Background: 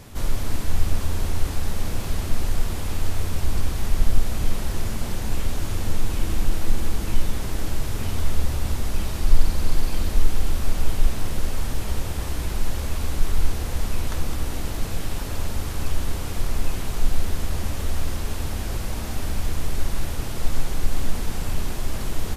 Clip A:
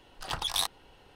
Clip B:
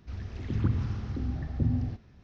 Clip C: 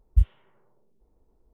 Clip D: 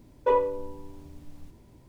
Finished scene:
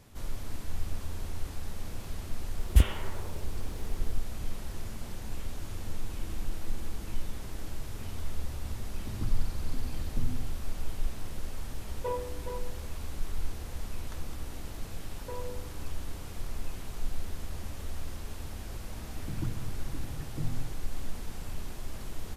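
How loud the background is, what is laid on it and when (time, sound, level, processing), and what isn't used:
background −12.5 dB
0:02.59: mix in C −0.5 dB + every bin compressed towards the loudest bin 2 to 1
0:08.57: mix in B −10 dB
0:11.78: mix in D −11.5 dB + single-tap delay 418 ms −7 dB
0:15.02: mix in D −12 dB + downward compressor, threshold −25 dBFS
0:18.78: mix in B −9 dB + comb filter 6.3 ms
not used: A

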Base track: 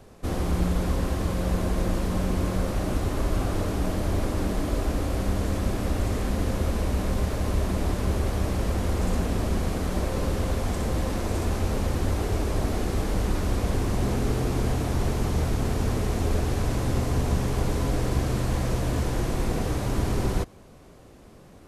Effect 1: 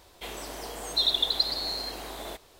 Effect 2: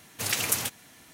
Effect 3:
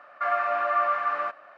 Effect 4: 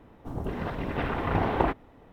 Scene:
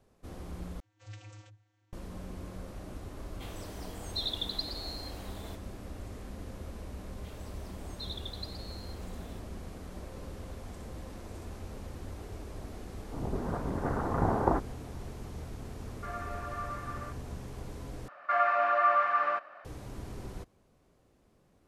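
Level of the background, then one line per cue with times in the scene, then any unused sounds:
base track −17 dB
0:00.80: overwrite with 2 −16.5 dB + channel vocoder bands 32, square 105 Hz
0:03.19: mix in 1 −10 dB
0:07.03: mix in 1 −18 dB
0:12.87: mix in 4 −2 dB + inverse Chebyshev low-pass filter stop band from 3,700 Hz, stop band 50 dB
0:15.82: mix in 3 −15.5 dB
0:18.08: overwrite with 3 −1 dB

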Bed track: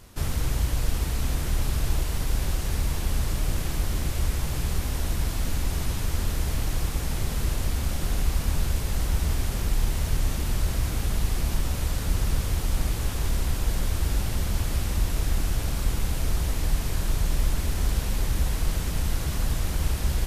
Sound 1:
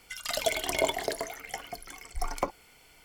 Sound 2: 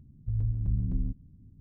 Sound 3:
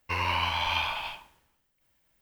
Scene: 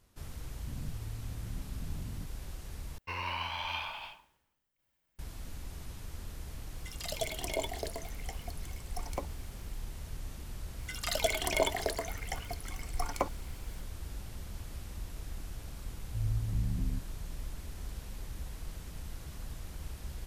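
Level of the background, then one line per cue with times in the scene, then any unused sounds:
bed track −17 dB
0:00.66: mix in 2 −17.5 dB + envelope flattener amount 100%
0:02.98: overwrite with 3 −8.5 dB
0:06.75: mix in 1 −6.5 dB + parametric band 1,400 Hz −11.5 dB 0.7 octaves
0:10.78: mix in 1 −2 dB
0:15.87: mix in 2 −4 dB

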